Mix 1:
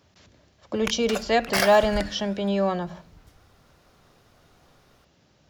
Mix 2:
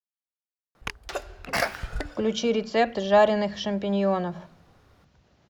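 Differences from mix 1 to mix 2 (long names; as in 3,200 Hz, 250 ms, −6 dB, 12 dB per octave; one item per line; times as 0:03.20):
speech: entry +1.45 s
master: add high-shelf EQ 3,600 Hz −7.5 dB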